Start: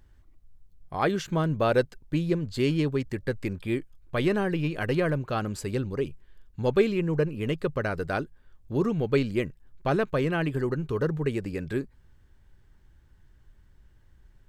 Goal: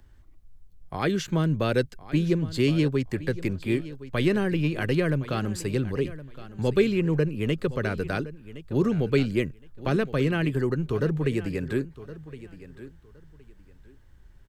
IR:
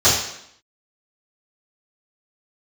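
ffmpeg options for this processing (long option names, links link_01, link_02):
-filter_complex "[0:a]acrossover=split=130|460|1500[link_01][link_02][link_03][link_04];[link_03]acompressor=threshold=-39dB:ratio=6[link_05];[link_01][link_02][link_05][link_04]amix=inputs=4:normalize=0,aecho=1:1:1066|2132:0.158|0.0333,volume=3dB"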